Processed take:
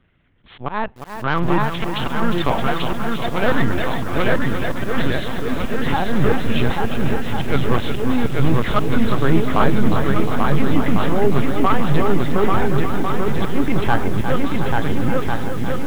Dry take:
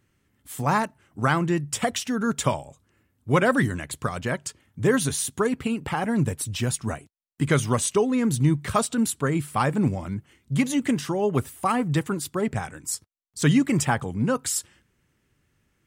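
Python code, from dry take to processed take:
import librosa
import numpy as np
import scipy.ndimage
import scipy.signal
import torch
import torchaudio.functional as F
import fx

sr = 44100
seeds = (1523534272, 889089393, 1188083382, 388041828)

p1 = fx.cheby_harmonics(x, sr, harmonics=(2, 5), levels_db=(-8, -15), full_scale_db=-8.5)
p2 = fx.echo_feedback(p1, sr, ms=731, feedback_pct=56, wet_db=-17.0)
p3 = fx.lpc_vocoder(p2, sr, seeds[0], excitation='pitch_kept', order=10)
p4 = p3 + fx.echo_swing(p3, sr, ms=1399, ratio=1.5, feedback_pct=41, wet_db=-3.5, dry=0)
p5 = fx.auto_swell(p4, sr, attack_ms=164.0)
p6 = fx.fold_sine(p5, sr, drive_db=9, ceiling_db=3.5)
p7 = p5 + (p6 * 10.0 ** (-11.0 / 20.0))
p8 = fx.echo_crushed(p7, sr, ms=356, feedback_pct=55, bits=5, wet_db=-8.0)
y = p8 * 10.0 ** (-5.0 / 20.0)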